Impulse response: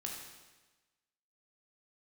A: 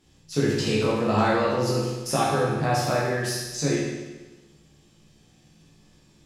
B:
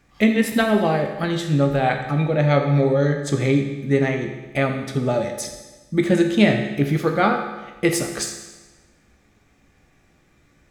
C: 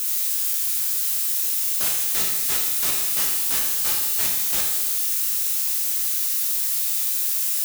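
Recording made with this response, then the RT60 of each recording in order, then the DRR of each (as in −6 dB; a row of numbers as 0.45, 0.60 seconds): C; 1.2, 1.2, 1.2 seconds; −6.5, 4.0, −1.5 decibels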